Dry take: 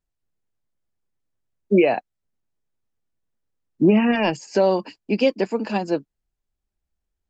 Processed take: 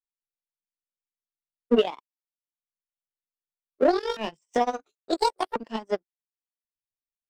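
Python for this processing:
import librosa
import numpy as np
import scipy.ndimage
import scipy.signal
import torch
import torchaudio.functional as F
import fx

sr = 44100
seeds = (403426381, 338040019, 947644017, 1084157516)

y = fx.pitch_ramps(x, sr, semitones=12.0, every_ms=1389)
y = fx.transient(y, sr, attack_db=5, sustain_db=-10)
y = fx.power_curve(y, sr, exponent=1.4)
y = y * librosa.db_to_amplitude(-4.0)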